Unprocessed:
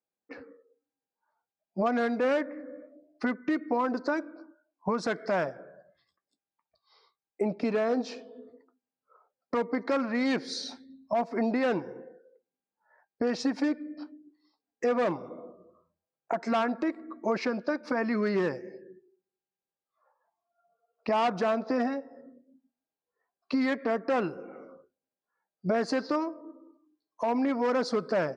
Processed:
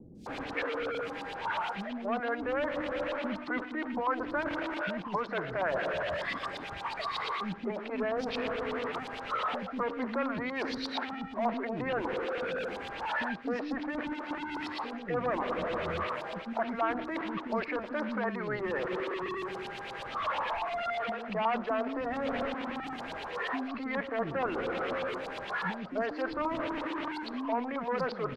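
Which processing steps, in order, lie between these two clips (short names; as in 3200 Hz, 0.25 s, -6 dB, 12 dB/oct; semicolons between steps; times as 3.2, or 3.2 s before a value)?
zero-crossing step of -34 dBFS; reverse; compressor 6:1, threshold -36 dBFS, peak gain reduction 13.5 dB; reverse; LFO low-pass saw up 8.4 Hz 900–3800 Hz; three bands offset in time lows, highs, mids 0.15/0.26 s, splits 290/5200 Hz; gain +5 dB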